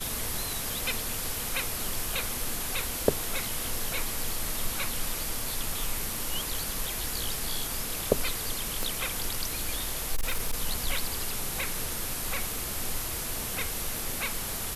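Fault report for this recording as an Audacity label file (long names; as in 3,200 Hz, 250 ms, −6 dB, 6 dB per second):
8.830000	8.830000	click −16 dBFS
10.150000	10.590000	clipping −23 dBFS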